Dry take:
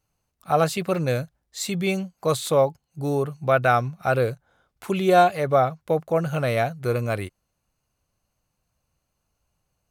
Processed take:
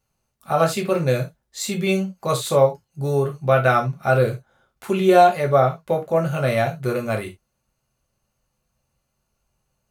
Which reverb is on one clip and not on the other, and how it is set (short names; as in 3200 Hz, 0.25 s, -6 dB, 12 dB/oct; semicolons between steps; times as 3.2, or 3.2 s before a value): non-linear reverb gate 0.1 s falling, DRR 1.5 dB